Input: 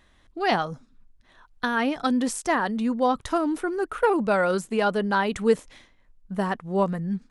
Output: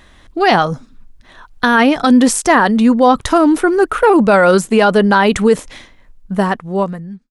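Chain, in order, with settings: fade out at the end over 1.30 s; loudness maximiser +15.5 dB; trim -1 dB

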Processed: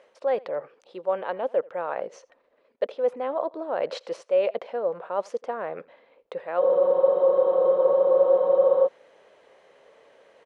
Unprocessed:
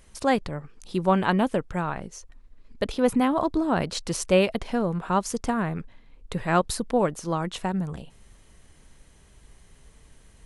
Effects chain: low-pass 2.9 kHz 12 dB/octave; reverse; compression 6:1, threshold -33 dBFS, peak gain reduction 17.5 dB; reverse; resonant high-pass 530 Hz, resonance Q 5.1; delay 83 ms -24 dB; spectral freeze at 6.62 s, 2.25 s; trim +3 dB

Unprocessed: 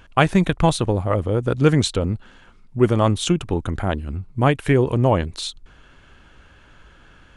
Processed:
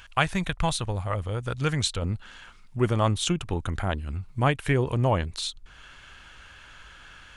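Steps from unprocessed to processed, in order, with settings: peaking EQ 320 Hz -13.5 dB 2.2 oct, from 2.02 s -6.5 dB; tape noise reduction on one side only encoder only; trim -2.5 dB

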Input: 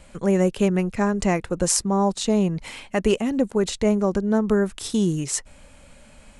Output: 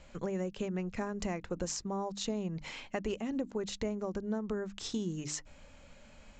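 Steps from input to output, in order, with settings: compression, threshold -25 dBFS, peak gain reduction 10.5 dB; resampled via 16 kHz; hum notches 50/100/150/200/250/300 Hz; trim -6.5 dB

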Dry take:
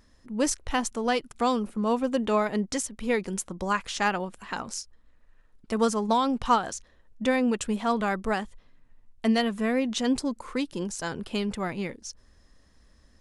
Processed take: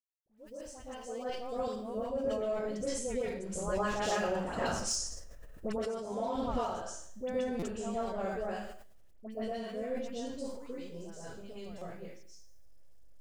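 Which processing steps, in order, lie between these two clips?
fade-in on the opening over 1.48 s; Doppler pass-by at 4.98 s, 6 m/s, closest 3.2 m; Bessel low-pass 6.5 kHz, order 6; reverberation RT60 0.55 s, pre-delay 112 ms, DRR -10 dB; in parallel at -5 dB: hysteresis with a dead band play -18.5 dBFS; on the sum: bit crusher 12-bit; graphic EQ 250/500/1000/2000/4000 Hz -8/+11/-8/-7/-6 dB; compression 12:1, threshold -26 dBFS, peak gain reduction 25.5 dB; peaking EQ 460 Hz -12 dB 0.27 oct; phase dispersion highs, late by 86 ms, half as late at 1.4 kHz; buffer glitch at 7.59/11.78 s, samples 256, times 5; decay stretcher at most 44 dB/s

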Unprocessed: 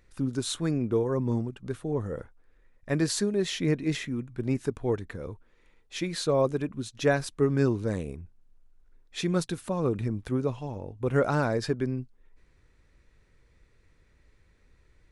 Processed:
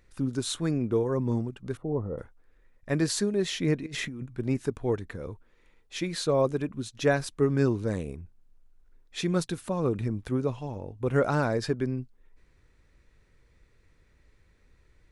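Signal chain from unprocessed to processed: 1.77–2.18 s: Savitzky-Golay filter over 65 samples; 3.86–4.26 s: compressor with a negative ratio -37 dBFS, ratio -1

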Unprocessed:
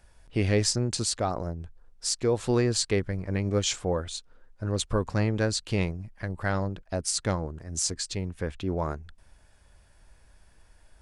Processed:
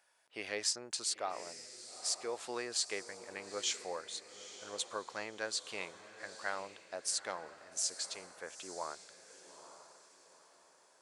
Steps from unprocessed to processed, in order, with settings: high-pass 700 Hz 12 dB/octave; on a send: echo that smears into a reverb 882 ms, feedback 40%, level -12.5 dB; on the sum: trim -6.5 dB

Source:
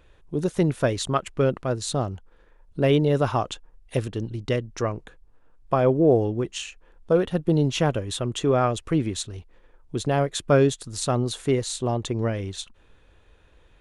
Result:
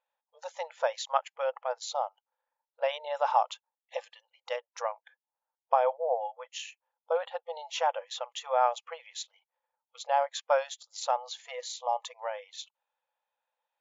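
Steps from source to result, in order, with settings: spectral noise reduction 20 dB; brick-wall FIR band-pass 480–7300 Hz; peaking EQ 860 Hz +15 dB 0.34 oct; trim -6.5 dB

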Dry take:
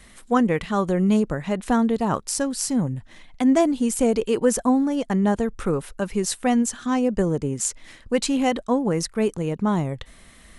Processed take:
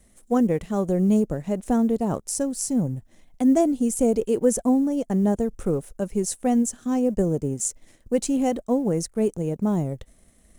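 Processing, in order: companding laws mixed up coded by A; high-order bell 2.1 kHz -11 dB 2.7 oct

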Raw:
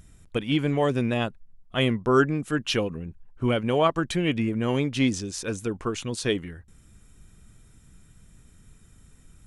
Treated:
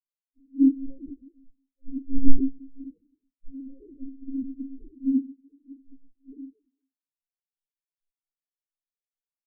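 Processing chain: resonant low-pass 380 Hz, resonance Q 4.1; bass shelf 89 Hz +6 dB; simulated room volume 1800 m³, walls mixed, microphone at 5 m; monotone LPC vocoder at 8 kHz 270 Hz; spectral contrast expander 4:1; trim -8.5 dB

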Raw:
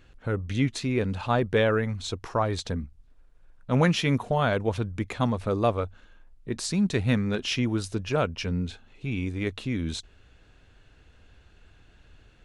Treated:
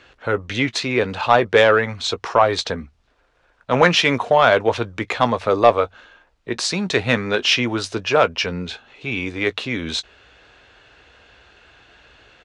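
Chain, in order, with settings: high-pass 44 Hz; three-band isolator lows -15 dB, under 400 Hz, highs -19 dB, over 6.5 kHz; in parallel at -5 dB: sine folder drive 4 dB, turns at -11 dBFS; on the sum: doubling 17 ms -13.5 dB; trim +5.5 dB

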